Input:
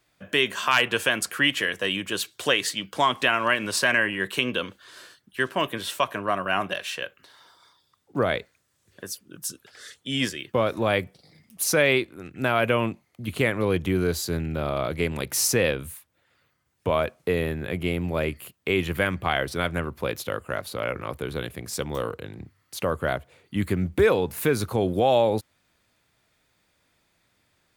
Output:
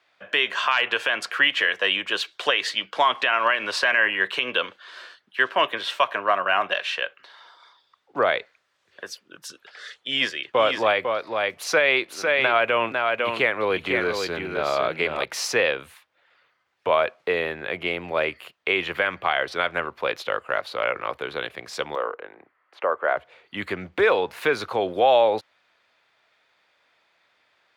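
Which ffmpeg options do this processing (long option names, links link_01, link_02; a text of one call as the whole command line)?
ffmpeg -i in.wav -filter_complex "[0:a]asettb=1/sr,asplit=3[link_01][link_02][link_03];[link_01]atrim=end=9.934[link_04];[link_02]atrim=start=9.93:end=15.24,asetpts=PTS-STARTPTS,afade=type=in:duration=0.004:curve=qsin,afade=type=out:start_time=5.306:duration=0.004:curve=qsin,aecho=1:1:501:0.531,atrim=end_sample=234171[link_05];[link_03]atrim=start=15.236[link_06];[link_04][link_05]acrossfade=duration=0.004:curve1=hsin:curve2=qsin[link_07];[link_07][link_06]acrossfade=duration=0.004:curve1=qsin:curve2=hsin,asettb=1/sr,asplit=3[link_08][link_09][link_10];[link_08]atrim=end=21.954[link_11];[link_09]atrim=start=21.95:end=23.17,asetpts=PTS-STARTPTS,afade=type=in:duration=0.004:curve=qsin,afade=type=out:start_time=1.216:duration=0.004:curve=qsin,acrossover=split=280 2200:gain=0.1 1 0.0708[link_12][link_13][link_14];[link_12][link_13][link_14]amix=inputs=3:normalize=0[link_15];[link_10]atrim=start=23.166[link_16];[link_11][link_15]acrossfade=duration=0.004:curve1=hsin:curve2=qsin[link_17];[link_17][link_16]acrossfade=duration=0.004:curve1=qsin:curve2=hsin,highpass=frequency=150:poles=1,acrossover=split=470 4600:gain=0.141 1 0.0708[link_18][link_19][link_20];[link_18][link_19][link_20]amix=inputs=3:normalize=0,alimiter=limit=-14.5dB:level=0:latency=1:release=112,volume=6.5dB" out.wav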